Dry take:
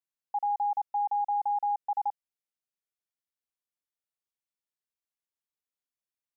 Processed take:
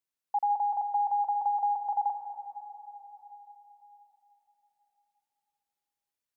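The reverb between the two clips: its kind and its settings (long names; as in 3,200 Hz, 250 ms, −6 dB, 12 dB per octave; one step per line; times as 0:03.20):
dense smooth reverb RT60 3.8 s, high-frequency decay 0.7×, pre-delay 105 ms, DRR 6 dB
level +2 dB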